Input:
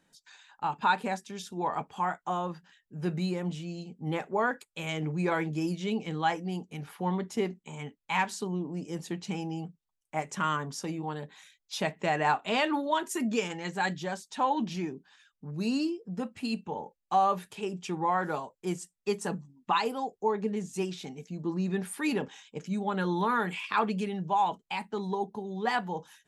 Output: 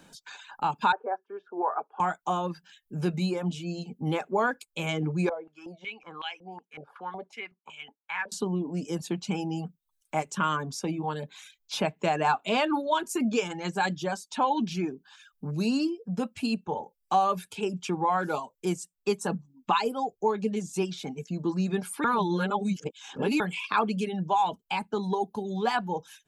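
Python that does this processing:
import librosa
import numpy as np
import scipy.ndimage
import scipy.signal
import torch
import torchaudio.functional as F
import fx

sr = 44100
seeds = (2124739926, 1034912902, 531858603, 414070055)

y = fx.cheby1_bandpass(x, sr, low_hz=370.0, high_hz=1500.0, order=3, at=(0.92, 2.0))
y = fx.filter_held_bandpass(y, sr, hz=5.4, low_hz=550.0, high_hz=2800.0, at=(5.29, 8.32))
y = fx.edit(y, sr, fx.reverse_span(start_s=22.04, length_s=1.36), tone=tone)
y = fx.notch(y, sr, hz=1900.0, q=5.8)
y = fx.dereverb_blind(y, sr, rt60_s=0.55)
y = fx.band_squash(y, sr, depth_pct=40)
y = y * 10.0 ** (3.5 / 20.0)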